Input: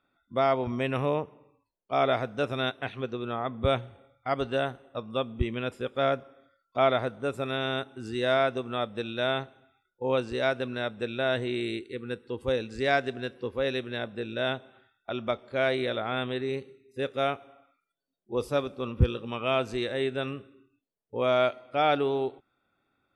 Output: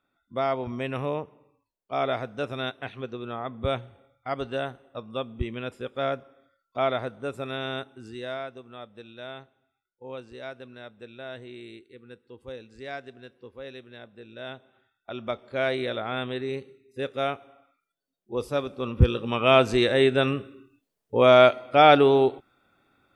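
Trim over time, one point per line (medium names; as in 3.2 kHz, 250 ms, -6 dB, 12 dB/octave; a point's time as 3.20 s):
7.82 s -2 dB
8.51 s -12 dB
14.19 s -12 dB
15.46 s 0 dB
18.55 s 0 dB
19.56 s +9 dB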